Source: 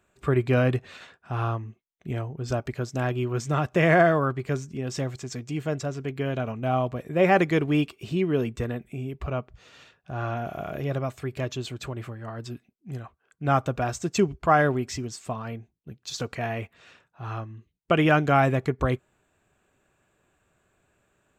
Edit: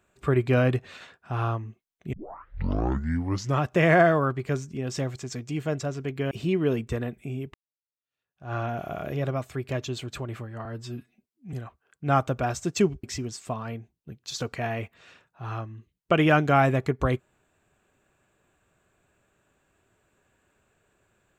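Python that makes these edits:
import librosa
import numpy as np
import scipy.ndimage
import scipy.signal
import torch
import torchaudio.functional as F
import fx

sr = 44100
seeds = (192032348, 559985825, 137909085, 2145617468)

y = fx.edit(x, sr, fx.tape_start(start_s=2.13, length_s=1.5),
    fx.cut(start_s=6.31, length_s=1.68),
    fx.fade_in_span(start_s=9.22, length_s=0.99, curve='exp'),
    fx.stretch_span(start_s=12.33, length_s=0.59, factor=1.5),
    fx.cut(start_s=14.42, length_s=0.41), tone=tone)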